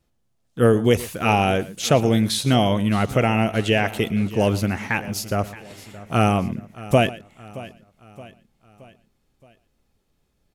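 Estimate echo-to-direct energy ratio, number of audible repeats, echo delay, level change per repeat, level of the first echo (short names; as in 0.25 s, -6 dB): -14.5 dB, 4, 0.117 s, no steady repeat, -18.0 dB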